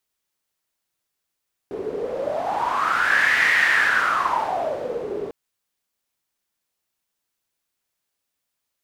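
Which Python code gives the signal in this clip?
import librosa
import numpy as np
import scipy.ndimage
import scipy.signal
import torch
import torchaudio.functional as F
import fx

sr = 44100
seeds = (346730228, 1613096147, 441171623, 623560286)

y = fx.wind(sr, seeds[0], length_s=3.6, low_hz=410.0, high_hz=1900.0, q=8.1, gusts=1, swing_db=11.5)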